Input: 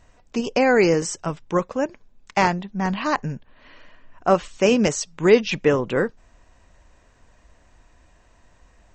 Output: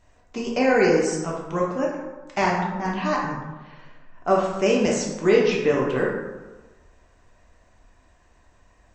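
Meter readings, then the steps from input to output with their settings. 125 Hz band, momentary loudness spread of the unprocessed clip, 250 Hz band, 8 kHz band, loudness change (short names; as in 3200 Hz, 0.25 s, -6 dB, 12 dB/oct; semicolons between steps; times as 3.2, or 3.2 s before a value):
-2.5 dB, 11 LU, -1.5 dB, -3.0 dB, -1.5 dB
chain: plate-style reverb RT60 1.2 s, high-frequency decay 0.5×, DRR -3 dB; gain -6 dB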